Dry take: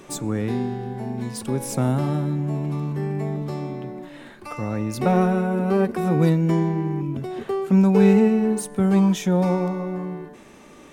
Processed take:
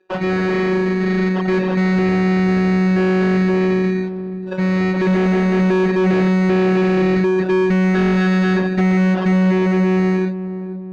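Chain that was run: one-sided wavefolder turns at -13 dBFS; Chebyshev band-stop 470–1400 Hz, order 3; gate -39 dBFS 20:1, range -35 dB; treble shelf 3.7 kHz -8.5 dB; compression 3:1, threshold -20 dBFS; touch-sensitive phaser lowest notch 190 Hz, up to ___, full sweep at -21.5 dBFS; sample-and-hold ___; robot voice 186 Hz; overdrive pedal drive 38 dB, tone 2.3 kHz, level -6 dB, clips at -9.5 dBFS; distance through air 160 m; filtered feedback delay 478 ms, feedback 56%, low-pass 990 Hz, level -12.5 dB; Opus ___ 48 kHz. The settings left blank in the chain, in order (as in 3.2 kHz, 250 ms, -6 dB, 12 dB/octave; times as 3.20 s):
2.5 kHz, 21×, 64 kbps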